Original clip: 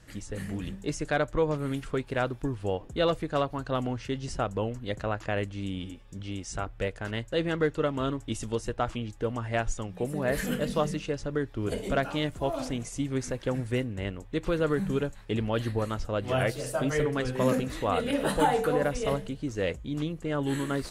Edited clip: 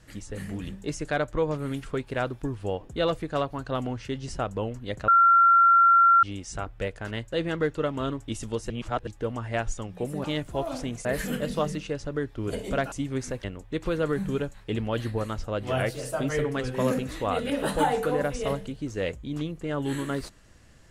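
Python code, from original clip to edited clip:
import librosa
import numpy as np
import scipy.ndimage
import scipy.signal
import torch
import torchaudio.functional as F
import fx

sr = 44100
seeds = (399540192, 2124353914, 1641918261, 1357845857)

y = fx.edit(x, sr, fx.bleep(start_s=5.08, length_s=1.15, hz=1370.0, db=-14.0),
    fx.reverse_span(start_s=8.7, length_s=0.37),
    fx.move(start_s=12.11, length_s=0.81, to_s=10.24),
    fx.cut(start_s=13.44, length_s=0.61), tone=tone)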